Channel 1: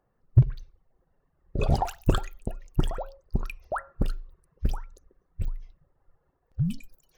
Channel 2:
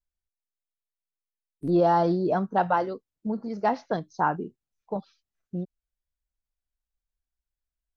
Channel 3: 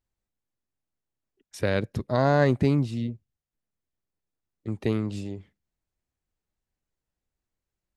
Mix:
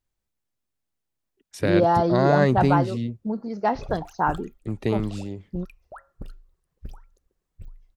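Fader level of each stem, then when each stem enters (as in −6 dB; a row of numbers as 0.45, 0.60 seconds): −12.0, +1.5, +1.5 decibels; 2.20, 0.00, 0.00 seconds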